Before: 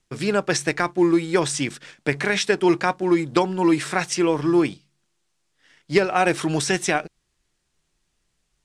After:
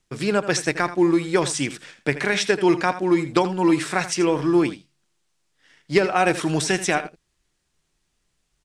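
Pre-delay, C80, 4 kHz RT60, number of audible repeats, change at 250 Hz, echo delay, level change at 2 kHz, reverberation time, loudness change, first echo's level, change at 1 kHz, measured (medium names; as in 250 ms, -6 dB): no reverb, no reverb, no reverb, 1, 0.0 dB, 82 ms, 0.0 dB, no reverb, 0.0 dB, -13.5 dB, 0.0 dB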